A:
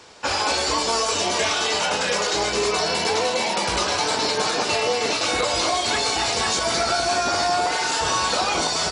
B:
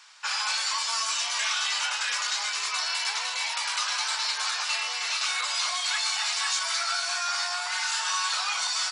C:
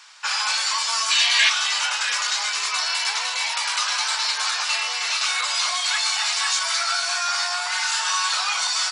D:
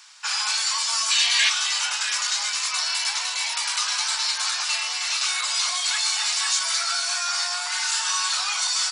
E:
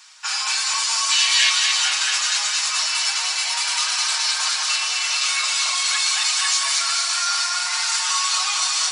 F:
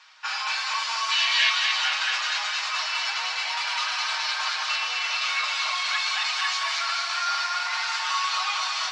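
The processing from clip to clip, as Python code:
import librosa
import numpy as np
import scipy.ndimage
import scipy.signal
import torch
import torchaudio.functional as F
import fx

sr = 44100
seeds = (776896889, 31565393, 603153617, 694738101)

y1 = scipy.signal.sosfilt(scipy.signal.butter(4, 1100.0, 'highpass', fs=sr, output='sos'), x)
y1 = F.gain(torch.from_numpy(y1), -3.5).numpy()
y2 = fx.hum_notches(y1, sr, base_hz=50, count=4)
y2 = fx.spec_box(y2, sr, start_s=1.11, length_s=0.38, low_hz=1600.0, high_hz=4700.0, gain_db=8)
y2 = F.gain(torch.from_numpy(y2), 5.0).numpy()
y3 = scipy.signal.sosfilt(scipy.signal.butter(4, 540.0, 'highpass', fs=sr, output='sos'), y2)
y3 = fx.high_shelf(y3, sr, hz=4900.0, db=9.5)
y3 = F.gain(torch.from_numpy(y3), -5.0).numpy()
y4 = y3 + 0.67 * np.pad(y3, (int(6.4 * sr / 1000.0), 0))[:len(y3)]
y4 = fx.echo_thinned(y4, sr, ms=223, feedback_pct=68, hz=420.0, wet_db=-5.0)
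y5 = fx.air_absorb(y4, sr, metres=230.0)
y5 = F.gain(torch.from_numpy(y5), 1.0).numpy()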